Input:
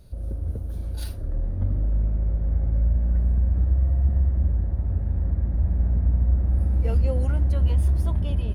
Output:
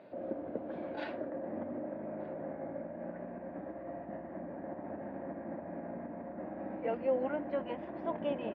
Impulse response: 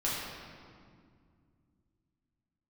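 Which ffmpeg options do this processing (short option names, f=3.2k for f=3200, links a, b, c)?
-filter_complex "[0:a]alimiter=limit=-22dB:level=0:latency=1:release=203,highpass=f=290:w=0.5412,highpass=f=290:w=1.3066,equalizer=f=420:t=q:w=4:g=-9,equalizer=f=620:t=q:w=4:g=4,equalizer=f=1.3k:t=q:w=4:g=-7,lowpass=f=2.2k:w=0.5412,lowpass=f=2.2k:w=1.3066,asplit=2[a][b];[b]adelay=1224,volume=-15dB,highshelf=f=4k:g=-27.6[c];[a][c]amix=inputs=2:normalize=0,volume=10.5dB"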